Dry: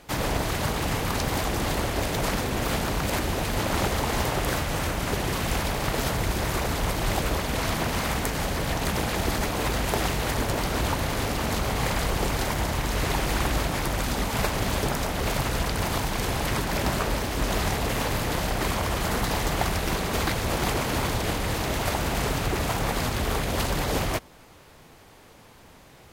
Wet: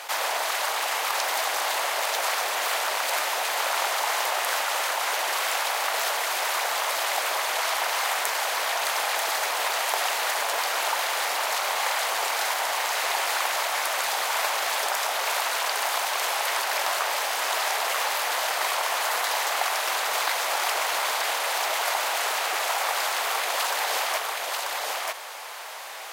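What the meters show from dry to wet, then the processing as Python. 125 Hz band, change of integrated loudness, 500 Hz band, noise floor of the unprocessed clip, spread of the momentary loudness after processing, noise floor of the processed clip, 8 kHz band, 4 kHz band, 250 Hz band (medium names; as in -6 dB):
under -40 dB, +2.0 dB, -2.5 dB, -51 dBFS, 1 LU, -31 dBFS, +4.5 dB, +4.5 dB, -24.0 dB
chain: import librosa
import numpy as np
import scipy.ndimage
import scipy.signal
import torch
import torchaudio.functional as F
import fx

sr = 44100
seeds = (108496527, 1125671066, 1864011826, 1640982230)

y = scipy.signal.sosfilt(scipy.signal.butter(4, 660.0, 'highpass', fs=sr, output='sos'), x)
y = y + 10.0 ** (-6.0 / 20.0) * np.pad(y, (int(938 * sr / 1000.0), 0))[:len(y)]
y = fx.env_flatten(y, sr, amount_pct=50)
y = F.gain(torch.from_numpy(y), 1.0).numpy()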